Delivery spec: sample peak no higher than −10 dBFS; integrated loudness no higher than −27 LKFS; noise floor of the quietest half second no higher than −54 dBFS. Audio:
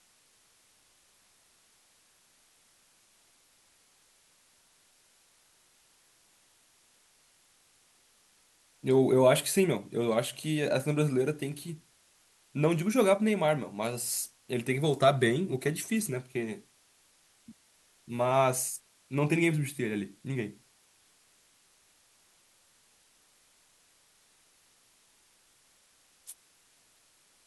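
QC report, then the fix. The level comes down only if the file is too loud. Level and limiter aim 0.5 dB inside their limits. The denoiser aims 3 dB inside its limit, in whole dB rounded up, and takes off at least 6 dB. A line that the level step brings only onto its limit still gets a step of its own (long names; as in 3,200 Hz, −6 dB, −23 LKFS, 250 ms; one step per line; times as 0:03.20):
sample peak −10.5 dBFS: in spec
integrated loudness −29.0 LKFS: in spec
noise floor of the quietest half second −66 dBFS: in spec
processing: no processing needed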